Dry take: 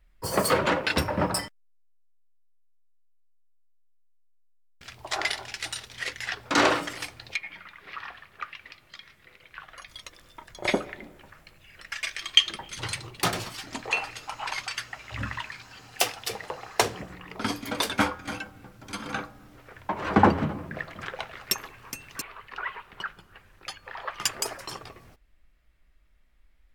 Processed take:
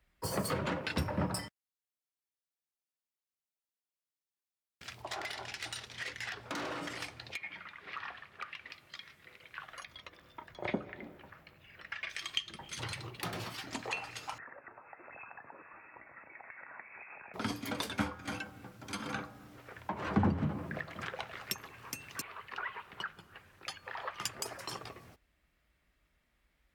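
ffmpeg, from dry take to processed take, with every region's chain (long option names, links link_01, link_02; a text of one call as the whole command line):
ffmpeg -i in.wav -filter_complex "[0:a]asettb=1/sr,asplit=3[link_01][link_02][link_03];[link_01]atrim=end=5.024[link_04];[link_02]atrim=start=5.02:end=8.7,asetpts=PTS-STARTPTS,afade=type=in:duration=0.004:curve=qsin,afade=type=out:start_time=3.676:duration=0.004:curve=qsin,highshelf=frequency=9800:gain=-12,acompressor=threshold=-30dB:ratio=3:attack=3.2:release=140:knee=1:detection=peak,volume=28.5dB,asoftclip=hard,volume=-28.5dB[link_05];[link_03]atrim=start=8.696[link_06];[link_04][link_05]acrossfade=duration=0.004:curve1=hsin:curve2=qsin[link_07];[link_07][link_06]acrossfade=duration=0.004:curve1=qsin:curve2=hsin,asettb=1/sr,asplit=3[link_08][link_09][link_10];[link_08]atrim=end=9.854[link_11];[link_09]atrim=start=9.85:end=12.1,asetpts=PTS-STARTPTS,afade=type=in:duration=0.004:curve=qsin,afade=type=out:start_time=2.246:duration=0.004:curve=qsin,acrossover=split=4300[link_12][link_13];[link_13]acompressor=threshold=-54dB:ratio=4:attack=1:release=60[link_14];[link_12][link_14]amix=inputs=2:normalize=0,equalizer=frequency=8500:width_type=o:width=1.7:gain=-12.5[link_15];[link_10]atrim=start=12.096[link_16];[link_11][link_15]acrossfade=duration=0.004:curve1=hsin:curve2=qsin[link_17];[link_17][link_16]acrossfade=duration=0.004:curve1=qsin:curve2=hsin,asettb=1/sr,asplit=3[link_18][link_19][link_20];[link_18]atrim=end=12.834[link_21];[link_19]atrim=start=12.83:end=13.71,asetpts=PTS-STARTPTS,afade=type=in:duration=0.004:curve=qsin,afade=type=out:start_time=0.876:duration=0.004:curve=qsin,equalizer=frequency=7800:width=0.79:gain=-7,acompressor=threshold=-33dB:ratio=2:attack=3.2:release=140:knee=1:detection=peak[link_22];[link_20]atrim=start=13.706[link_23];[link_21][link_22]acrossfade=duration=0.004:curve1=hsin:curve2=qsin[link_24];[link_24][link_23]acrossfade=duration=0.004:curve1=qsin:curve2=hsin,asettb=1/sr,asplit=3[link_25][link_26][link_27];[link_25]atrim=end=14.384[link_28];[link_26]atrim=start=14.38:end=17.34,asetpts=PTS-STARTPTS,afade=type=in:duration=0.004:curve=qsin,afade=type=out:start_time=2.956:duration=0.004:curve=qsin,lowshelf=frequency=340:gain=-8.5,acompressor=threshold=-42dB:ratio=16:attack=3.2:release=140:knee=1:detection=peak,lowpass=frequency=2300:width_type=q:width=0.5098,lowpass=frequency=2300:width_type=q:width=0.6013,lowpass=frequency=2300:width_type=q:width=0.9,lowpass=frequency=2300:width_type=q:width=2.563,afreqshift=-2700[link_29];[link_27]atrim=start=17.336[link_30];[link_28][link_29]acrossfade=duration=0.004:curve1=hsin:curve2=qsin[link_31];[link_31][link_30]acrossfade=duration=0.004:curve1=qsin:curve2=hsin,highpass=77,acrossover=split=210[link_32][link_33];[link_33]acompressor=threshold=-35dB:ratio=3[link_34];[link_32][link_34]amix=inputs=2:normalize=0,volume=-2dB" out.wav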